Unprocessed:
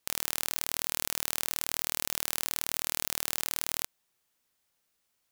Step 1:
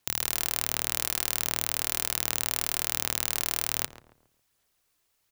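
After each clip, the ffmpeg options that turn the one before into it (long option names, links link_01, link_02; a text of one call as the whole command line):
ffmpeg -i in.wav -filter_complex "[0:a]afreqshift=-150,aphaser=in_gain=1:out_gain=1:delay=3:decay=0.32:speed=1.3:type=sinusoidal,asplit=2[link_01][link_02];[link_02]adelay=137,lowpass=frequency=1200:poles=1,volume=-11dB,asplit=2[link_03][link_04];[link_04]adelay=137,lowpass=frequency=1200:poles=1,volume=0.4,asplit=2[link_05][link_06];[link_06]adelay=137,lowpass=frequency=1200:poles=1,volume=0.4,asplit=2[link_07][link_08];[link_08]adelay=137,lowpass=frequency=1200:poles=1,volume=0.4[link_09];[link_01][link_03][link_05][link_07][link_09]amix=inputs=5:normalize=0,volume=3dB" out.wav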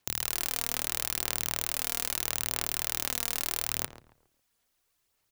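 ffmpeg -i in.wav -af "aphaser=in_gain=1:out_gain=1:delay=4.3:decay=0.35:speed=0.77:type=sinusoidal,volume=-3dB" out.wav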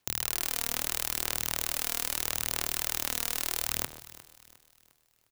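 ffmpeg -i in.wav -af "aecho=1:1:355|710|1065|1420:0.133|0.0573|0.0247|0.0106" out.wav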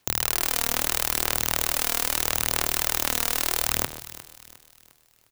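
ffmpeg -i in.wav -af "volume=14.5dB,asoftclip=hard,volume=-14.5dB,volume=8.5dB" out.wav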